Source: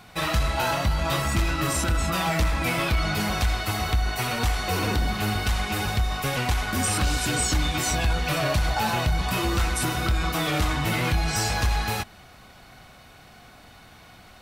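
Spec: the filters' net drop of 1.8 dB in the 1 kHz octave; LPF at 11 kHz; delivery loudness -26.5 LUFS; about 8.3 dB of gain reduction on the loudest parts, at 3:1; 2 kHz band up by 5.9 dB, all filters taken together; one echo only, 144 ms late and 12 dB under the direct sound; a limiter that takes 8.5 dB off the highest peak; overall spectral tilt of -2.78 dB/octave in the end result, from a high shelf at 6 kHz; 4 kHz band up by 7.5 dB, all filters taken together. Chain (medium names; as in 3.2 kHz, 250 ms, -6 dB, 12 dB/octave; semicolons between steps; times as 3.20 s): low-pass 11 kHz; peaking EQ 1 kHz -5 dB; peaking EQ 2 kHz +7 dB; peaking EQ 4 kHz +6 dB; treble shelf 6 kHz +4 dB; compression 3:1, threshold -29 dBFS; peak limiter -24 dBFS; delay 144 ms -12 dB; trim +5 dB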